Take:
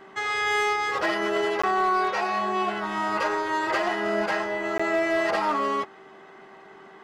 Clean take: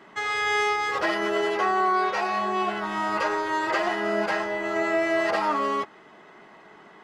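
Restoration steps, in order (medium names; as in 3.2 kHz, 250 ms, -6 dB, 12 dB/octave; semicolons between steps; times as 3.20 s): clip repair -17.5 dBFS; de-hum 387.4 Hz, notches 4; interpolate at 1.62/4.78 s, 15 ms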